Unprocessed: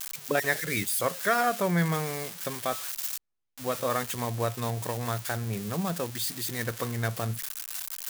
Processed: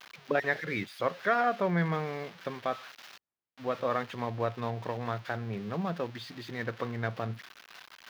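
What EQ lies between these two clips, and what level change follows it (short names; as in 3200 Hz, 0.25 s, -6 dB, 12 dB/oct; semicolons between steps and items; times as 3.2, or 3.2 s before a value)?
HPF 170 Hz 6 dB/oct; air absorption 290 m; 0.0 dB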